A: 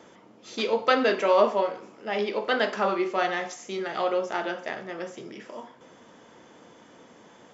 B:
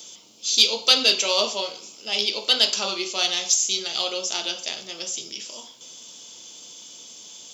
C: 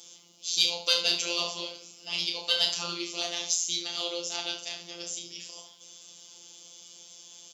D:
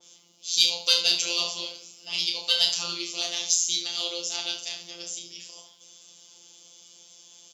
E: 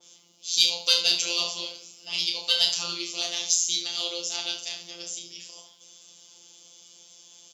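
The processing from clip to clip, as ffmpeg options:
ffmpeg -i in.wav -af "aexciter=amount=14:drive=8.6:freq=2900,volume=-6dB" out.wav
ffmpeg -i in.wav -af "aecho=1:1:30|71:0.562|0.282,afftfilt=real='hypot(re,im)*cos(PI*b)':imag='0':win_size=1024:overlap=0.75,volume=-5dB" out.wav
ffmpeg -i in.wav -af "adynamicequalizer=threshold=0.0112:dfrequency=2500:dqfactor=0.7:tfrequency=2500:tqfactor=0.7:attack=5:release=100:ratio=0.375:range=3.5:mode=boostabove:tftype=highshelf,volume=-2dB" out.wav
ffmpeg -i in.wav -af "highpass=51" out.wav

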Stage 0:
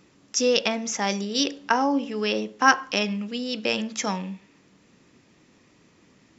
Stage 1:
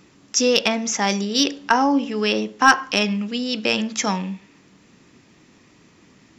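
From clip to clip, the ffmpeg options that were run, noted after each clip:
ffmpeg -i in.wav -af "equalizer=frequency=530:width_type=o:width=0.47:gain=-3.5,acontrast=36" out.wav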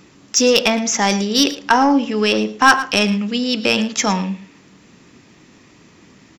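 ffmpeg -i in.wav -af "acontrast=50,aecho=1:1:112:0.158,volume=-1dB" out.wav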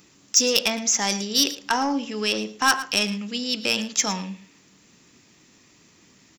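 ffmpeg -i in.wav -af "crystalizer=i=3:c=0,volume=-10.5dB" out.wav

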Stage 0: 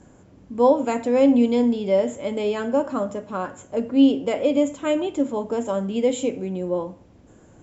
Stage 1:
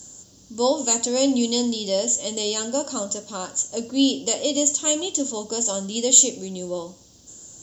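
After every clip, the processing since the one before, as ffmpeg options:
ffmpeg -i in.wav -af "aexciter=amount=14.2:drive=7.7:freq=3500,volume=-4.5dB" out.wav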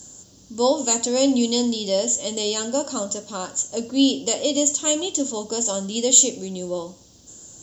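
ffmpeg -i in.wav -af "equalizer=frequency=13000:width=0.33:gain=-2.5,volume=1.5dB" out.wav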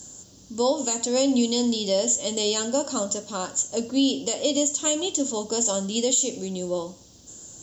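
ffmpeg -i in.wav -af "alimiter=limit=-12dB:level=0:latency=1:release=175" out.wav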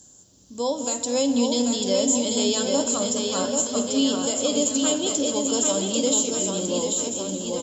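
ffmpeg -i in.wav -filter_complex "[0:a]asplit=2[link_01][link_02];[link_02]aecho=0:1:213|426|639|852|1065|1278|1491:0.237|0.142|0.0854|0.0512|0.0307|0.0184|0.0111[link_03];[link_01][link_03]amix=inputs=2:normalize=0,dynaudnorm=framelen=140:gausssize=9:maxgain=8.5dB,asplit=2[link_04][link_05];[link_05]aecho=0:1:790|1501|2141|2717|3235:0.631|0.398|0.251|0.158|0.1[link_06];[link_04][link_06]amix=inputs=2:normalize=0,volume=-8dB" out.wav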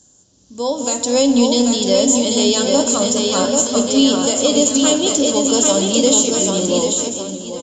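ffmpeg -i in.wav -af "dynaudnorm=framelen=110:gausssize=13:maxgain=13.5dB,aresample=16000,aresample=44100,aeval=exprs='0.891*(cos(1*acos(clip(val(0)/0.891,-1,1)))-cos(1*PI/2))+0.00708*(cos(4*acos(clip(val(0)/0.891,-1,1)))-cos(4*PI/2))':channel_layout=same" out.wav

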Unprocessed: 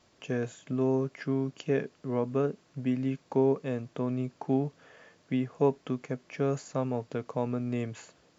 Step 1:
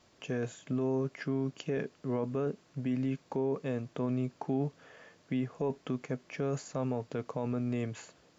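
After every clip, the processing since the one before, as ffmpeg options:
ffmpeg -i in.wav -af "alimiter=limit=-24dB:level=0:latency=1:release=12" out.wav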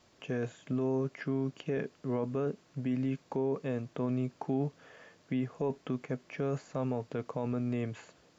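ffmpeg -i in.wav -filter_complex "[0:a]acrossover=split=3500[link_01][link_02];[link_02]acompressor=threshold=-59dB:ratio=4:attack=1:release=60[link_03];[link_01][link_03]amix=inputs=2:normalize=0" out.wav

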